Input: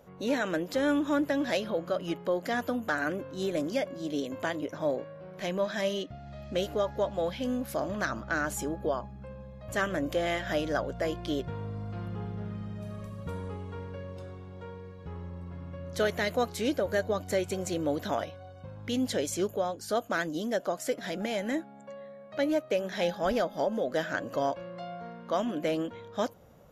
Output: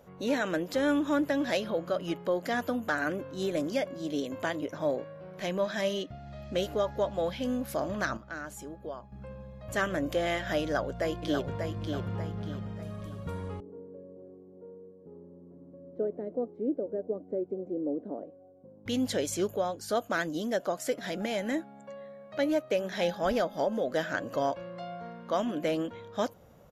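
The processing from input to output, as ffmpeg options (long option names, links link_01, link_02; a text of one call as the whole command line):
ffmpeg -i in.wav -filter_complex "[0:a]asplit=2[link_01][link_02];[link_02]afade=type=in:start_time=10.63:duration=0.01,afade=type=out:start_time=11.67:duration=0.01,aecho=0:1:590|1180|1770|2360|2950:0.530884|0.212354|0.0849415|0.0339766|0.0135906[link_03];[link_01][link_03]amix=inputs=2:normalize=0,asettb=1/sr,asplit=3[link_04][link_05][link_06];[link_04]atrim=end=13.604[link_07];[link_05]atrim=start=13.6:end=18.86,asetpts=PTS-STARTPTS,afade=type=in:duration=0.004:curve=qsin,afade=type=out:start_time=5.256:duration=0.004:curve=qsin,asuperpass=centerf=330:order=4:qfactor=1.2[link_08];[link_06]atrim=start=18.856[link_09];[link_07][link_08]acrossfade=duration=0.004:curve1=hsin:curve2=qsin[link_10];[link_10][link_09]acrossfade=duration=0.004:curve1=qsin:curve2=hsin,asplit=3[link_11][link_12][link_13];[link_11]atrim=end=8.172[link_14];[link_12]atrim=start=8.168:end=9.122,asetpts=PTS-STARTPTS,volume=-9.5dB[link_15];[link_13]atrim=start=9.118[link_16];[link_14][link_15]acrossfade=duration=0.004:curve1=hsin:curve2=hsin[link_17];[link_17][link_16]acrossfade=duration=0.004:curve1=hsin:curve2=hsin" out.wav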